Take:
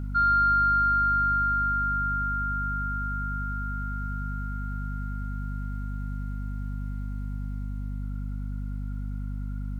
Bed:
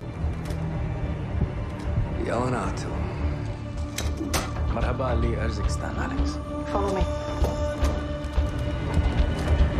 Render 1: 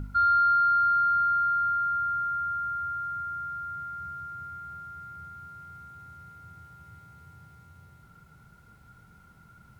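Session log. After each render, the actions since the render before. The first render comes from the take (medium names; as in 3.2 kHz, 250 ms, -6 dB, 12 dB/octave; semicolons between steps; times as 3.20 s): de-hum 50 Hz, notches 5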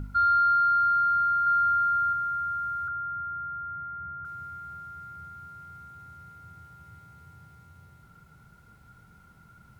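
1.42–2.13 s: doubling 45 ms -4.5 dB; 2.88–4.25 s: steep low-pass 2.1 kHz 48 dB/octave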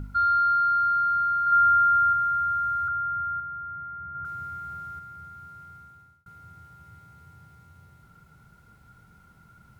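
1.52–3.40 s: comb 1.5 ms, depth 82%; 4.15–4.99 s: gain +4 dB; 5.52–6.26 s: fade out equal-power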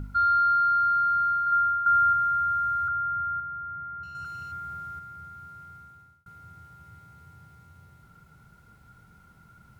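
1.29–1.86 s: fade out, to -10.5 dB; 4.03–4.52 s: companding laws mixed up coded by A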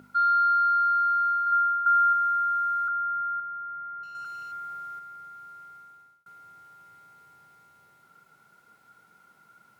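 high-pass 370 Hz 12 dB/octave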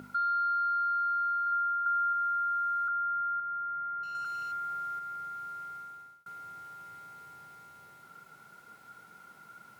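in parallel at -2 dB: peak limiter -25 dBFS, peak gain reduction 8.5 dB; on the sum: compression 2:1, threshold -37 dBFS, peak gain reduction 11 dB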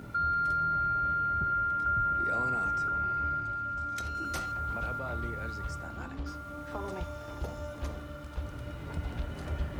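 add bed -13 dB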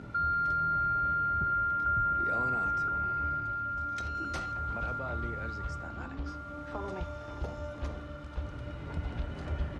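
distance through air 81 m; delay 542 ms -23.5 dB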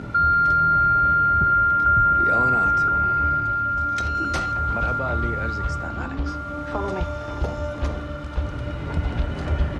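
trim +11.5 dB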